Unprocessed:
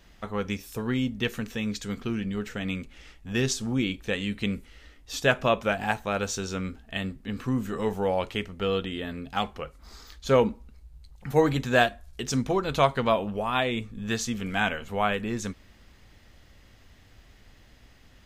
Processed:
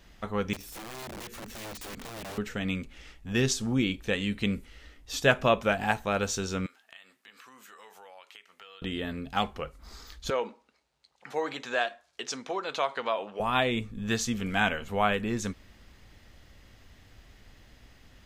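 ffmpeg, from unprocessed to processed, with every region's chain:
ffmpeg -i in.wav -filter_complex "[0:a]asettb=1/sr,asplit=3[link_01][link_02][link_03];[link_01]atrim=end=0.534[link_04];[link_02]atrim=start=0.53:end=2.38,asetpts=PTS-STARTPTS,afade=type=in:duration=0.004:curve=qsin,afade=type=out:start_time=1.846:duration=0.004:curve=qsin,equalizer=frequency=110:width=0.37:gain=3.5,acompressor=threshold=-34dB:ratio=16:attack=3.2:release=140:knee=1:detection=peak,aeval=exprs='(mod(63.1*val(0)+1,2)-1)/63.1':channel_layout=same[link_05];[link_03]atrim=start=2.376[link_06];[link_04][link_05]acrossfade=duration=0.004:curve1=hsin:curve2=qsin[link_07];[link_07][link_06]acrossfade=duration=0.004:curve1=qsin:curve2=hsin,asettb=1/sr,asplit=3[link_08][link_09][link_10];[link_08]atrim=end=6.664[link_11];[link_09]atrim=start=6.66:end=8.82,asetpts=PTS-STARTPTS,afade=type=in:duration=0.004:curve=qsin,afade=type=out:start_time=2.156:duration=0.004:curve=qsin,highpass=1100,acompressor=threshold=-49dB:ratio=4:attack=3.2:release=140:knee=1:detection=peak[link_12];[link_10]atrim=start=8.816[link_13];[link_11][link_12]acrossfade=duration=0.004:curve1=hsin:curve2=qsin[link_14];[link_14][link_13]acrossfade=duration=0.004:curve1=qsin:curve2=hsin,asettb=1/sr,asplit=3[link_15][link_16][link_17];[link_15]atrim=end=10.304[link_18];[link_16]atrim=start=10.3:end=13.4,asetpts=PTS-STARTPTS,afade=type=in:duration=0.004:curve=qsin,afade=type=out:start_time=3.096:duration=0.004:curve=qsin,acompressor=threshold=-25dB:ratio=2:attack=3.2:release=140:knee=1:detection=peak,highpass=520,lowpass=6300[link_19];[link_17]atrim=start=13.396[link_20];[link_18][link_19]acrossfade=duration=0.004:curve1=hsin:curve2=qsin[link_21];[link_21][link_20]acrossfade=duration=0.004:curve1=qsin:curve2=hsin" out.wav

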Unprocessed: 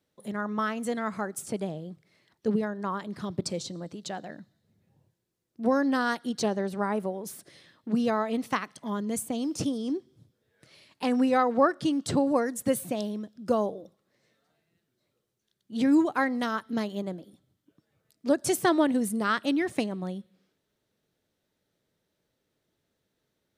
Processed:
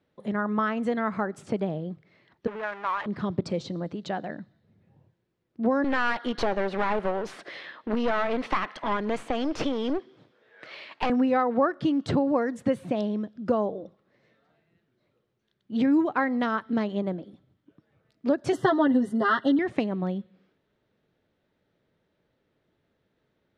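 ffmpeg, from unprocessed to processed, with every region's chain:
ffmpeg -i in.wav -filter_complex "[0:a]asettb=1/sr,asplit=3[link_01][link_02][link_03];[link_01]atrim=end=2.474[link_04];[link_02]atrim=start=2.47:end=3.06,asetpts=PTS-STARTPTS,afade=type=in:duration=0.004:curve=qsin,afade=type=out:start_time=0.586:duration=0.004:curve=qsin,aeval=exprs='val(0)+0.5*0.0282*sgn(val(0))':channel_layout=same,highpass=910,adynamicsmooth=sensitivity=5:basefreq=1400[link_05];[link_03]atrim=start=3.056[link_06];[link_04][link_05]acrossfade=duration=0.004:curve1=hsin:curve2=qsin[link_07];[link_07][link_06]acrossfade=duration=0.004:curve1=qsin:curve2=hsin,asettb=1/sr,asplit=3[link_08][link_09][link_10];[link_08]atrim=end=5.844[link_11];[link_09]atrim=start=5.84:end=11.1,asetpts=PTS-STARTPTS,afade=type=in:duration=0.004:curve=qsin,afade=type=out:start_time=5.256:duration=0.004:curve=qsin,highpass=frequency=440:poles=1,asplit=2[link_12][link_13];[link_13]highpass=frequency=720:poles=1,volume=20dB,asoftclip=type=tanh:threshold=-12.5dB[link_14];[link_12][link_14]amix=inputs=2:normalize=0,lowpass=frequency=3000:poles=1,volume=-6dB,aeval=exprs='clip(val(0),-1,0.015)':channel_layout=same[link_15];[link_10]atrim=start=11.096[link_16];[link_11][link_15]acrossfade=duration=0.004:curve1=hsin:curve2=qsin[link_17];[link_17][link_16]acrossfade=duration=0.004:curve1=qsin:curve2=hsin,asettb=1/sr,asplit=3[link_18][link_19][link_20];[link_18]atrim=end=18.524[link_21];[link_19]atrim=start=18.52:end=19.59,asetpts=PTS-STARTPTS,afade=type=in:duration=0.004:curve=qsin,afade=type=out:start_time=1.066:duration=0.004:curve=qsin,asuperstop=centerf=2400:order=20:qfactor=3.3,aecho=1:1:7.5:0.98,atrim=end_sample=47187[link_22];[link_20]atrim=start=19.586[link_23];[link_21][link_22]acrossfade=duration=0.004:curve1=hsin:curve2=qsin[link_24];[link_24][link_23]acrossfade=duration=0.004:curve1=qsin:curve2=hsin,lowpass=2700,acompressor=threshold=-30dB:ratio=2,volume=6dB" out.wav

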